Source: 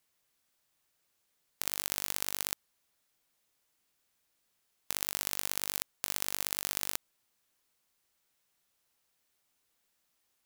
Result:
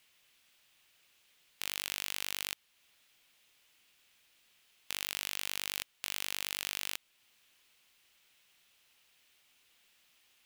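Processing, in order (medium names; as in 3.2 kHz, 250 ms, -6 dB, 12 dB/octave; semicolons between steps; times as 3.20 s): in parallel at -2.5 dB: compression, threshold -46 dBFS, peak gain reduction 18.5 dB; on the sum: saturation -12 dBFS, distortion -11 dB; peaking EQ 2.8 kHz +12 dB 1.3 oct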